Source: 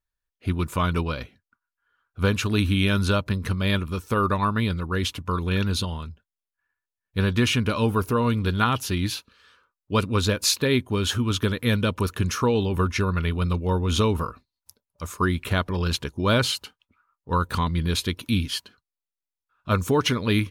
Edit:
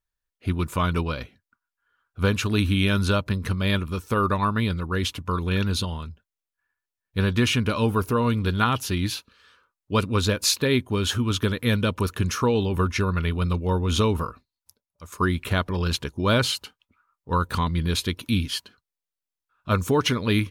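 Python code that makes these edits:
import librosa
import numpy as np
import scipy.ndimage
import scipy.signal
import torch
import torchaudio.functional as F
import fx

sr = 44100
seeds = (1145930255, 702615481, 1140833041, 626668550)

y = fx.edit(x, sr, fx.fade_out_to(start_s=14.17, length_s=0.95, floor_db=-11.0), tone=tone)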